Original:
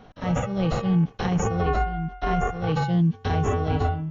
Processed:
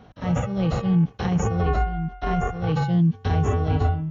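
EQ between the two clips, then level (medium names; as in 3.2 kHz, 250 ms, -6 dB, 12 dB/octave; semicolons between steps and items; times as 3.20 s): high-pass 57 Hz; bass shelf 120 Hz +9.5 dB; -1.5 dB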